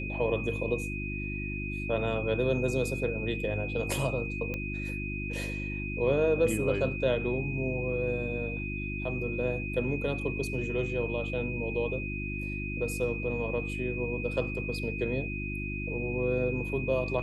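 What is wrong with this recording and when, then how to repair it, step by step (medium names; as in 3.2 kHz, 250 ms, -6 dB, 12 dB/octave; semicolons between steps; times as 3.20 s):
hum 50 Hz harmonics 7 -36 dBFS
whine 2.5 kHz -37 dBFS
4.54 s: pop -21 dBFS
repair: de-click; band-stop 2.5 kHz, Q 30; de-hum 50 Hz, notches 7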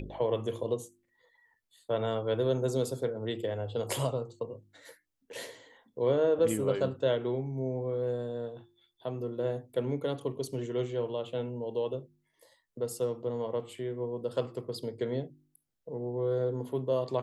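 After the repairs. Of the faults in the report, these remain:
nothing left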